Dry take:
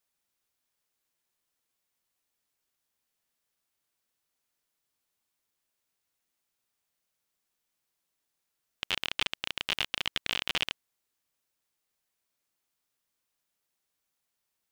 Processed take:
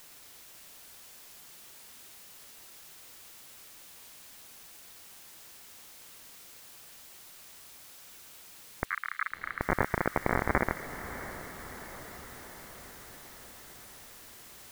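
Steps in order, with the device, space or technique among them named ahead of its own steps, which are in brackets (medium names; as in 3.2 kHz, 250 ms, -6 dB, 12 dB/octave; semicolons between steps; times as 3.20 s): scrambled radio voice (band-pass 330–3000 Hz; frequency inversion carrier 2.5 kHz; white noise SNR 13 dB); 8.85–9.61 s: Chebyshev band-pass 1.2–4.3 kHz, order 4; feedback echo behind a high-pass 220 ms, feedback 75%, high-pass 2.1 kHz, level -11.5 dB; echo that smears into a reverb 661 ms, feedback 65%, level -13 dB; trim +10 dB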